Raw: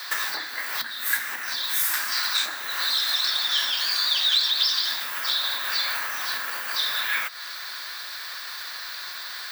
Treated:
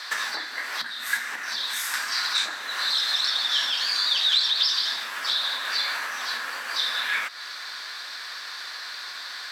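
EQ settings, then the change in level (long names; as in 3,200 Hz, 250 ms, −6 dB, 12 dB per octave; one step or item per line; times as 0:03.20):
low-pass filter 8,000 Hz 12 dB per octave
0.0 dB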